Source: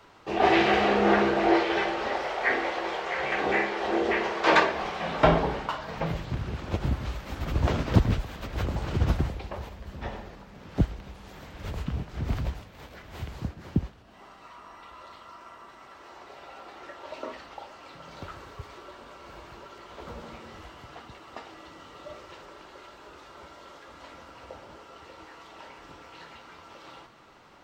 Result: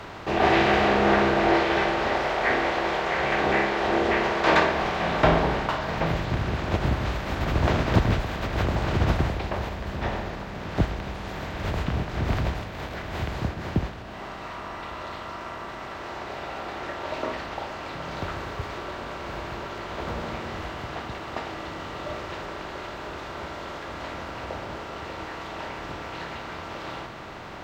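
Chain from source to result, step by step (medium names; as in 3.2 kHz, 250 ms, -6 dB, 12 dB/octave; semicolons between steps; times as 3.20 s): spectral levelling over time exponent 0.6; trim -2 dB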